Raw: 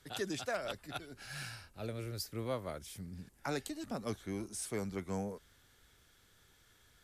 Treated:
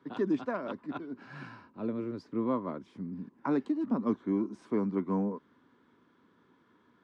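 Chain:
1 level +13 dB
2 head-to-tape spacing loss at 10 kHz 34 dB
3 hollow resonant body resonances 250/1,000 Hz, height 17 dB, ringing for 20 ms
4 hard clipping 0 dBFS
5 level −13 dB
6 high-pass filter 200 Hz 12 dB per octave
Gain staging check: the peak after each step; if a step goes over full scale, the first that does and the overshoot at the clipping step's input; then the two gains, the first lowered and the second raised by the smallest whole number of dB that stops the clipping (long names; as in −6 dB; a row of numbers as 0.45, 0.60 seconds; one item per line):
−10.0, −13.0, −2.0, −2.0, −15.0, −17.5 dBFS
no step passes full scale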